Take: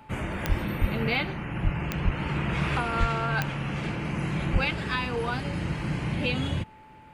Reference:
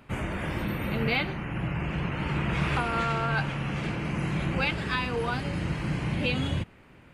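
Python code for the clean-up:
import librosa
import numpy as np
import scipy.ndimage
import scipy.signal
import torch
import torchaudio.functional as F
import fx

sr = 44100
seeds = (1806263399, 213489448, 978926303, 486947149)

y = fx.fix_declick_ar(x, sr, threshold=10.0)
y = fx.notch(y, sr, hz=870.0, q=30.0)
y = fx.fix_deplosive(y, sr, at_s=(0.48, 0.8, 1.63, 2.04, 2.99, 4.52))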